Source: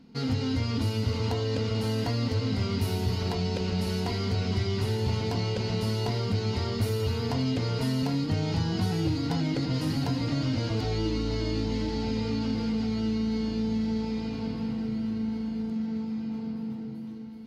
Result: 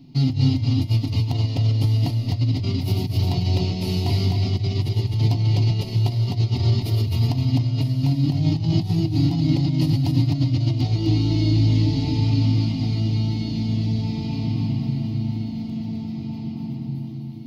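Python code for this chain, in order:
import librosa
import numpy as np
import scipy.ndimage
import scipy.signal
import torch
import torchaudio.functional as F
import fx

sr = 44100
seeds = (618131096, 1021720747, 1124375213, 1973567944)

y = fx.graphic_eq_10(x, sr, hz=(125, 500, 1000, 8000), db=(7, -4, -9, -11))
y = fx.over_compress(y, sr, threshold_db=-26.0, ratio=-0.5)
y = fx.fixed_phaser(y, sr, hz=310.0, stages=8)
y = y + 10.0 ** (-4.0 / 20.0) * np.pad(y, (int(257 * sr / 1000.0), 0))[:len(y)]
y = F.gain(torch.from_numpy(y), 8.0).numpy()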